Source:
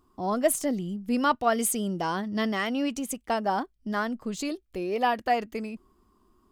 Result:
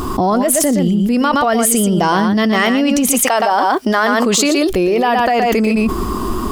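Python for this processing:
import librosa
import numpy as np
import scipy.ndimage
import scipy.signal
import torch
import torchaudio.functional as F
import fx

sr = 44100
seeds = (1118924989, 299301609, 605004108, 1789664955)

y = fx.highpass(x, sr, hz=fx.line((3.11, 650.0), (4.69, 280.0)), slope=12, at=(3.11, 4.69), fade=0.02)
y = y + 10.0 ** (-8.5 / 20.0) * np.pad(y, (int(119 * sr / 1000.0), 0))[:len(y)]
y = fx.env_flatten(y, sr, amount_pct=100)
y = y * 10.0 ** (4.0 / 20.0)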